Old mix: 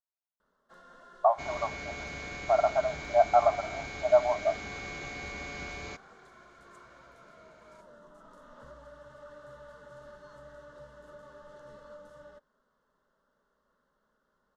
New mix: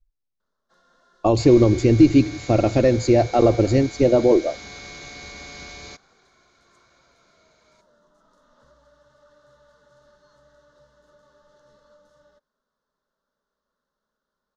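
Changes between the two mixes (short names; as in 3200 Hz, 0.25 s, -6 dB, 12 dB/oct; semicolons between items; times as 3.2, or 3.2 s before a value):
speech: remove brick-wall FIR band-pass 590–1600 Hz; first sound -7.0 dB; master: add band shelf 4900 Hz +8.5 dB 1.1 oct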